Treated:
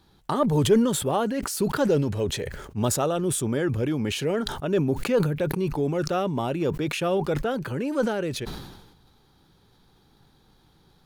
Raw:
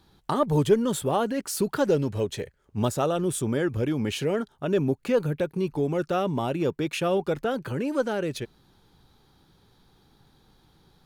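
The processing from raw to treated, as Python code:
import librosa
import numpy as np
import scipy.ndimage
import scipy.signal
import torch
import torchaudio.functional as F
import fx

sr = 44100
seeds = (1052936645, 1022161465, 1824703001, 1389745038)

y = fx.sustainer(x, sr, db_per_s=52.0)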